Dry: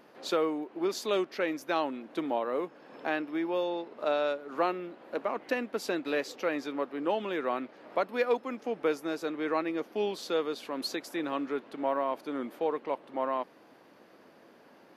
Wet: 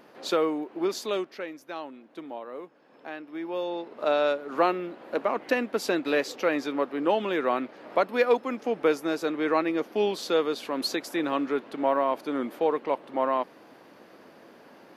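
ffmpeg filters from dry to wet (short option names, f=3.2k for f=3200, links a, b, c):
-af "volume=16.5dB,afade=t=out:st=0.8:d=0.71:silence=0.281838,afade=t=in:st=3.21:d=1.07:silence=0.223872"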